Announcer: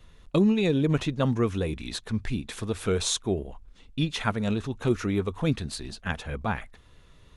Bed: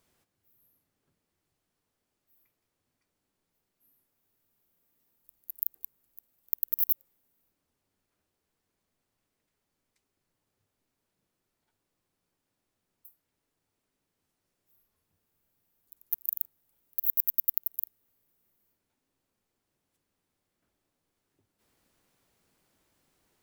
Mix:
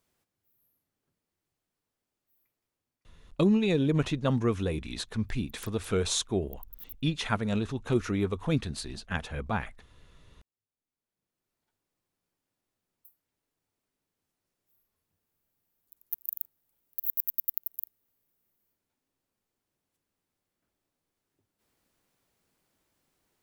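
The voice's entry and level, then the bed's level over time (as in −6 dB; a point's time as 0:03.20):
3.05 s, −2.0 dB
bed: 0:02.73 −4.5 dB
0:03.60 −19.5 dB
0:10.57 −19.5 dB
0:11.54 −3.5 dB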